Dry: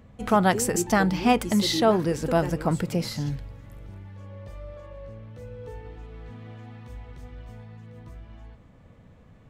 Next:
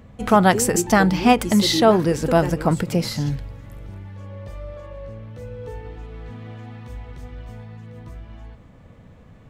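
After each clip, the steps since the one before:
every ending faded ahead of time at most 330 dB per second
level +5.5 dB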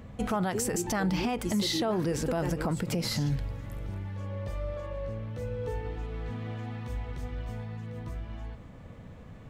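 downward compressor 2 to 1, threshold −24 dBFS, peak gain reduction 8.5 dB
brickwall limiter −20.5 dBFS, peak gain reduction 11.5 dB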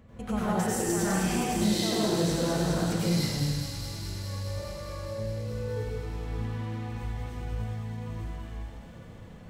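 on a send: delay with a high-pass on its return 207 ms, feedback 82%, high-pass 3,000 Hz, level −4.5 dB
on the sum: dense smooth reverb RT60 1.4 s, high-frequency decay 0.75×, pre-delay 80 ms, DRR −9 dB
level −8.5 dB

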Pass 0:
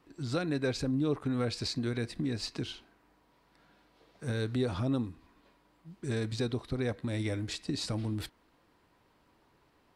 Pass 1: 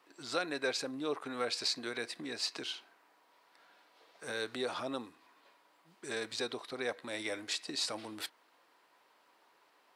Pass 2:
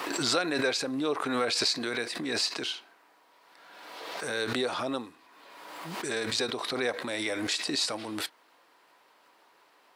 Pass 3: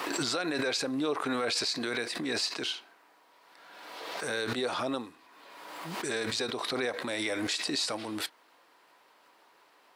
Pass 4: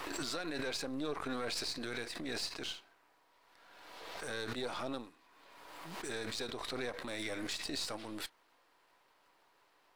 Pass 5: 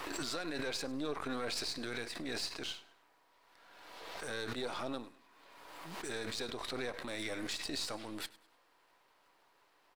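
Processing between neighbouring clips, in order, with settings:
high-pass filter 590 Hz 12 dB per octave; level +3 dB
background raised ahead of every attack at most 32 dB per second; level +5.5 dB
brickwall limiter −20.5 dBFS, peak gain reduction 8.5 dB
gain on one half-wave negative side −7 dB; level −5.5 dB
repeating echo 101 ms, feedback 34%, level −20 dB

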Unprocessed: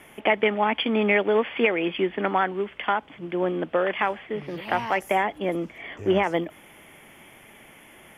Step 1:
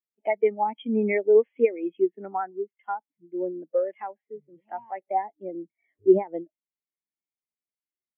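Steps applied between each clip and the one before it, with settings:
every bin expanded away from the loudest bin 2.5 to 1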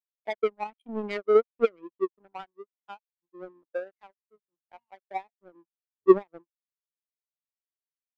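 power curve on the samples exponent 2
level +3 dB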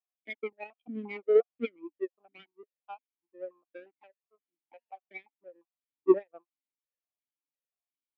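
formant filter that steps through the vowels 5.7 Hz
level +8 dB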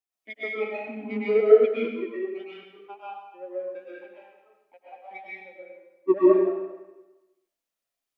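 comb and all-pass reverb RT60 1.1 s, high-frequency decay 0.95×, pre-delay 85 ms, DRR −8.5 dB

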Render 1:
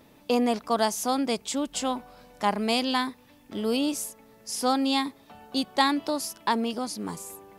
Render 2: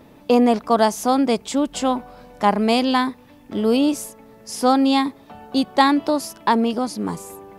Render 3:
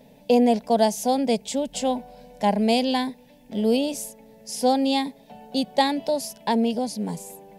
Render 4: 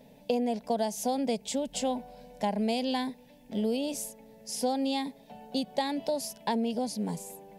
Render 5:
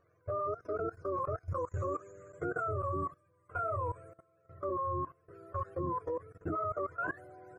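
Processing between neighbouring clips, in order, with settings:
high-shelf EQ 2,100 Hz −8.5 dB; level +9 dB
phaser with its sweep stopped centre 330 Hz, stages 6; level −1 dB
downward compressor, threshold −22 dBFS, peak gain reduction 8 dB; level −3.5 dB
frequency axis turned over on the octave scale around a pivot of 540 Hz; output level in coarse steps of 18 dB; one half of a high-frequency compander decoder only; level +2 dB

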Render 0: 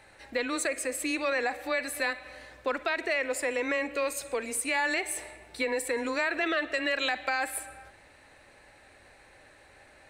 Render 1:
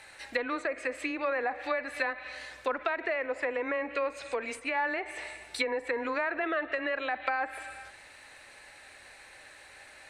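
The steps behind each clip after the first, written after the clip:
treble cut that deepens with the level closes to 1,100 Hz, closed at −26.5 dBFS
tilt shelving filter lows −6.5 dB, about 820 Hz
level +1.5 dB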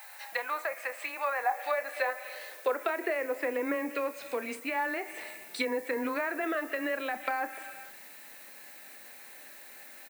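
high-pass filter sweep 800 Hz → 210 Hz, 0:01.39–0:04.10
background noise violet −49 dBFS
double-tracking delay 28 ms −12 dB
level −2.5 dB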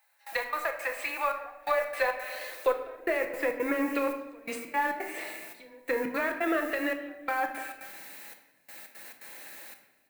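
in parallel at −8.5 dB: asymmetric clip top −34 dBFS
on the sum: gate pattern "...xx.xx.xxxxxx." 171 BPM −24 dB
rectangular room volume 460 cubic metres, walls mixed, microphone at 0.75 metres

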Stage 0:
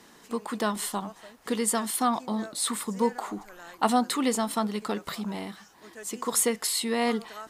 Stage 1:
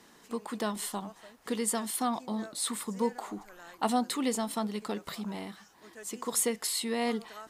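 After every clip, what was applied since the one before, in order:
dynamic equaliser 1,300 Hz, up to −4 dB, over −39 dBFS, Q 1.6
level −4 dB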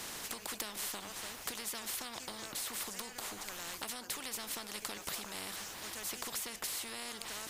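downward compressor, threshold −38 dBFS, peak gain reduction 14 dB
every bin compressed towards the loudest bin 4 to 1
level +6.5 dB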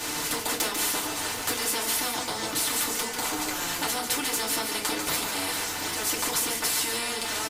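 single-tap delay 144 ms −6.5 dB
feedback delay network reverb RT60 0.31 s, low-frequency decay 1×, high-frequency decay 0.75×, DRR −5 dB
level +7 dB

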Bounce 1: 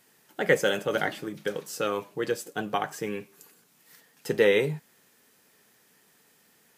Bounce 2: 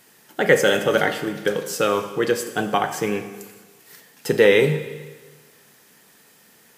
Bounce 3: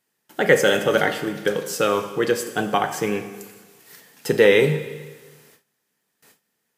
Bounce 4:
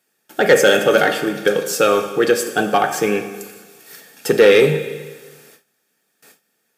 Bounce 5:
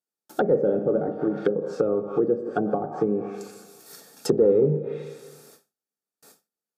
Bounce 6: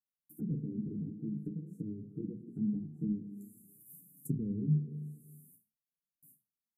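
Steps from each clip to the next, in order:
in parallel at −2.5 dB: brickwall limiter −17.5 dBFS, peak gain reduction 9 dB; on the sum: four-comb reverb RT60 1.4 s, combs from 27 ms, DRR 9 dB; level +3.5 dB
noise gate with hold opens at −41 dBFS
low-shelf EQ 120 Hz −11.5 dB; soft clipping −10.5 dBFS, distortion −16 dB; notch comb filter 1,000 Hz; level +7.5 dB
treble cut that deepens with the level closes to 390 Hz, closed at −13.5 dBFS; noise gate with hold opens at −44 dBFS; flat-topped bell 2,300 Hz −10 dB 1.2 octaves; level −3 dB
inverse Chebyshev band-stop filter 550–5,100 Hz, stop band 50 dB; multi-voice chorus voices 2, 0.49 Hz, delay 10 ms, depth 3.8 ms; mains-hum notches 60/120 Hz

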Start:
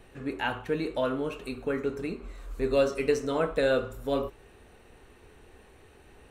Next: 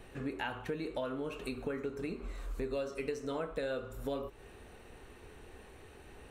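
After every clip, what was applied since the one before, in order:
downward compressor 5 to 1, threshold −36 dBFS, peak gain reduction 15.5 dB
level +1 dB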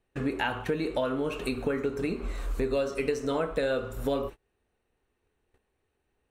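noise gate −46 dBFS, range −32 dB
level +8.5 dB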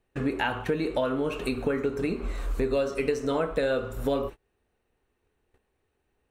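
parametric band 10,000 Hz −2 dB 2.8 octaves
level +2 dB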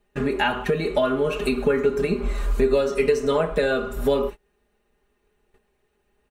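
comb filter 4.9 ms, depth 83%
level +3.5 dB

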